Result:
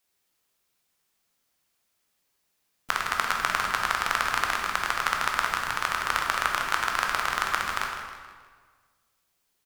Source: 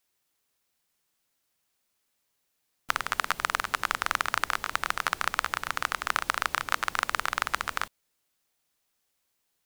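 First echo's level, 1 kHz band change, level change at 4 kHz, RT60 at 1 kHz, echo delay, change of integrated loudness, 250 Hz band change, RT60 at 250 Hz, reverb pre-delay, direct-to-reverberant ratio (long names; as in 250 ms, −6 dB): −11.0 dB, +3.0 dB, +2.5 dB, 1.6 s, 158 ms, +3.0 dB, +3.5 dB, 1.7 s, 11 ms, 0.5 dB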